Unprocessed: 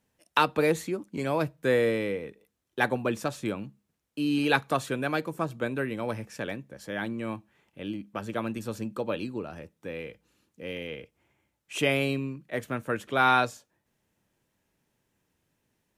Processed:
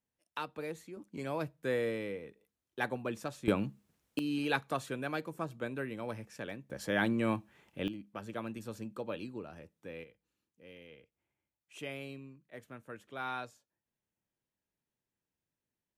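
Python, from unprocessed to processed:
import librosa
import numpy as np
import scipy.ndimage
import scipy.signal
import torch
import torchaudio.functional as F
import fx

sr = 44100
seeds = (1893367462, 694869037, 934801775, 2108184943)

y = fx.gain(x, sr, db=fx.steps((0.0, -16.5), (0.97, -9.0), (3.48, 3.5), (4.19, -8.0), (6.7, 2.5), (7.88, -8.5), (10.04, -17.0)))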